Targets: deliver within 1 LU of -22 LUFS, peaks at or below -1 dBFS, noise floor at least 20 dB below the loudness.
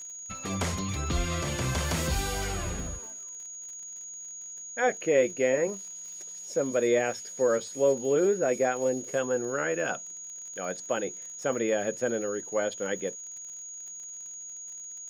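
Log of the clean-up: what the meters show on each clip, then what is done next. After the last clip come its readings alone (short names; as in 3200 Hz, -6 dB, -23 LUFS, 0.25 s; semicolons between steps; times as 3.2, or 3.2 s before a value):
ticks 56/s; steady tone 6700 Hz; tone level -39 dBFS; loudness -30.0 LUFS; peak -12.0 dBFS; loudness target -22.0 LUFS
-> de-click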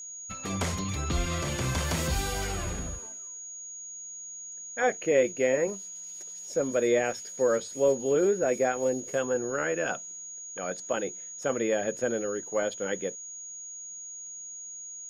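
ticks 0.13/s; steady tone 6700 Hz; tone level -39 dBFS
-> notch 6700 Hz, Q 30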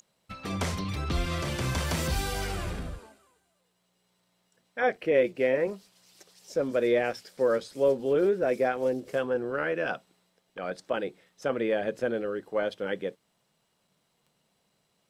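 steady tone none; loudness -29.0 LUFS; peak -12.0 dBFS; loudness target -22.0 LUFS
-> gain +7 dB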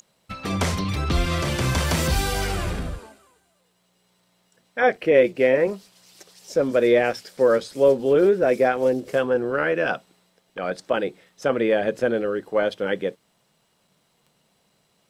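loudness -22.0 LUFS; peak -5.0 dBFS; noise floor -67 dBFS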